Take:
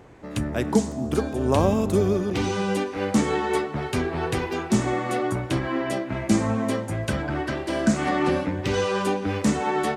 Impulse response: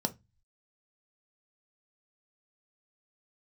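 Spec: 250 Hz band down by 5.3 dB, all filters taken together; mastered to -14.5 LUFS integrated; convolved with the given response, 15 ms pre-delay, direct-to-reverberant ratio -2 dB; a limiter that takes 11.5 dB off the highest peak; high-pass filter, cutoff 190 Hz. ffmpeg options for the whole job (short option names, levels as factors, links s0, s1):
-filter_complex "[0:a]highpass=190,equalizer=f=250:t=o:g=-5,alimiter=limit=0.1:level=0:latency=1,asplit=2[s0][s1];[1:a]atrim=start_sample=2205,adelay=15[s2];[s1][s2]afir=irnorm=-1:irlink=0,volume=0.75[s3];[s0][s3]amix=inputs=2:normalize=0,volume=2.51"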